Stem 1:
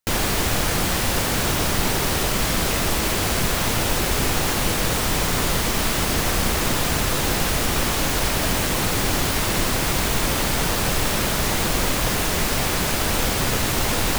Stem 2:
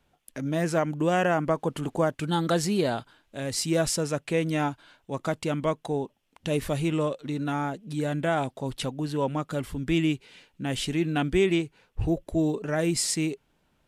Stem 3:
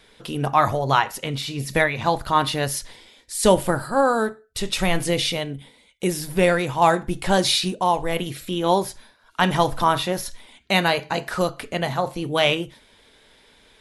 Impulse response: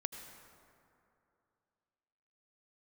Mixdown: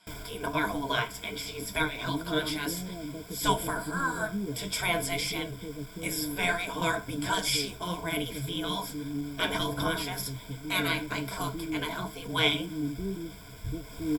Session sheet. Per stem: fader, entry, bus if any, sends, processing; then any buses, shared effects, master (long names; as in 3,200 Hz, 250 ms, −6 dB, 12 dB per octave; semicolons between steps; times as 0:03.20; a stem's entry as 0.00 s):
−11.0 dB, 0.00 s, no send, soft clipping −21.5 dBFS, distortion −11 dB; automatic ducking −11 dB, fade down 0.35 s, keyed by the third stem
−9.0 dB, 1.65 s, no send, inverse Chebyshev low-pass filter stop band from 1,900 Hz, stop band 70 dB
+3.0 dB, 0.00 s, no send, gate on every frequency bin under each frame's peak −10 dB weak; flanger 0.58 Hz, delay 5.3 ms, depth 9.5 ms, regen −61%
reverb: not used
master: low-shelf EQ 340 Hz +5 dB; flanger 1.5 Hz, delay 5.1 ms, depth 4 ms, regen +65%; EQ curve with evenly spaced ripples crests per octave 1.7, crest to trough 15 dB